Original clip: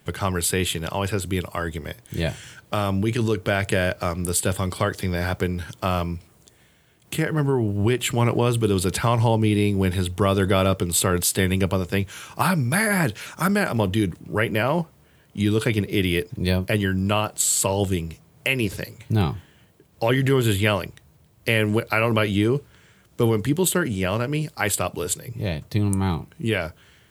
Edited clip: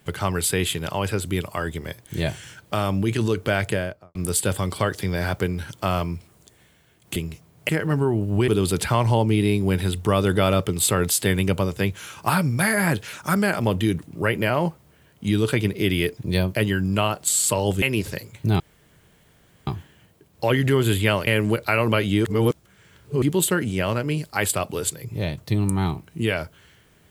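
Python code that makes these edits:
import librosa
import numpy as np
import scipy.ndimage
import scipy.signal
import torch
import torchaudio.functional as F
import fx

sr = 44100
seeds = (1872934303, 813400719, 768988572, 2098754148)

y = fx.studio_fade_out(x, sr, start_s=3.59, length_s=0.56)
y = fx.edit(y, sr, fx.cut(start_s=7.95, length_s=0.66),
    fx.move(start_s=17.95, length_s=0.53, to_s=7.16),
    fx.insert_room_tone(at_s=19.26, length_s=1.07),
    fx.cut(start_s=20.86, length_s=0.65),
    fx.reverse_span(start_s=22.49, length_s=0.97), tone=tone)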